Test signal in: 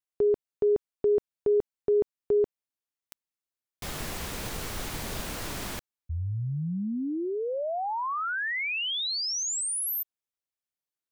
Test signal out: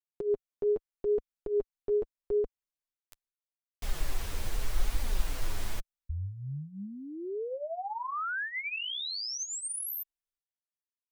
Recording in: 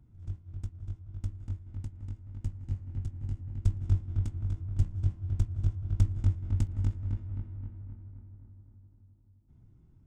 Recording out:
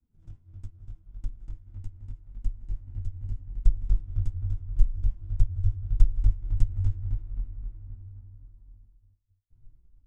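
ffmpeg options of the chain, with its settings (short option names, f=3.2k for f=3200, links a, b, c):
-af "agate=range=-33dB:threshold=-53dB:ratio=3:release=249:detection=rms,asubboost=boost=11:cutoff=52,flanger=delay=3.4:depth=7.1:regen=7:speed=0.8:shape=triangular,volume=-2.5dB"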